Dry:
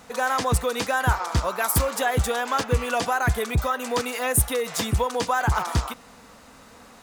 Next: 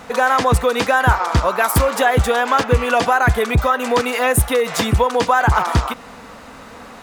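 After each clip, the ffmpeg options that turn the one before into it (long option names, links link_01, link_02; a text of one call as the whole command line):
ffmpeg -i in.wav -filter_complex "[0:a]bass=frequency=250:gain=-2,treble=frequency=4000:gain=-8,asplit=2[link_01][link_02];[link_02]acompressor=threshold=-30dB:ratio=6,volume=-2dB[link_03];[link_01][link_03]amix=inputs=2:normalize=0,volume=6.5dB" out.wav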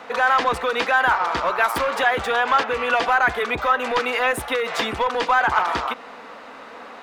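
ffmpeg -i in.wav -filter_complex "[0:a]acrossover=split=270 4400:gain=0.0794 1 0.178[link_01][link_02][link_03];[link_01][link_02][link_03]amix=inputs=3:normalize=0,acrossover=split=1000[link_04][link_05];[link_04]asoftclip=type=tanh:threshold=-22dB[link_06];[link_06][link_05]amix=inputs=2:normalize=0" out.wav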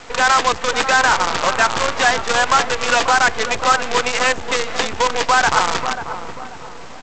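ffmpeg -i in.wav -filter_complex "[0:a]aresample=16000,acrusher=bits=4:dc=4:mix=0:aa=0.000001,aresample=44100,asplit=2[link_01][link_02];[link_02]adelay=539,lowpass=frequency=840:poles=1,volume=-7.5dB,asplit=2[link_03][link_04];[link_04]adelay=539,lowpass=frequency=840:poles=1,volume=0.49,asplit=2[link_05][link_06];[link_06]adelay=539,lowpass=frequency=840:poles=1,volume=0.49,asplit=2[link_07][link_08];[link_08]adelay=539,lowpass=frequency=840:poles=1,volume=0.49,asplit=2[link_09][link_10];[link_10]adelay=539,lowpass=frequency=840:poles=1,volume=0.49,asplit=2[link_11][link_12];[link_12]adelay=539,lowpass=frequency=840:poles=1,volume=0.49[link_13];[link_01][link_03][link_05][link_07][link_09][link_11][link_13]amix=inputs=7:normalize=0,volume=3dB" out.wav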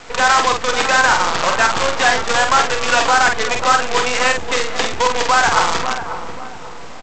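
ffmpeg -i in.wav -filter_complex "[0:a]asplit=2[link_01][link_02];[link_02]adelay=48,volume=-5dB[link_03];[link_01][link_03]amix=inputs=2:normalize=0" out.wav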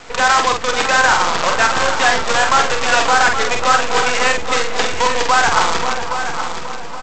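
ffmpeg -i in.wav -af "aecho=1:1:821|1642|2463|3284:0.355|0.114|0.0363|0.0116" out.wav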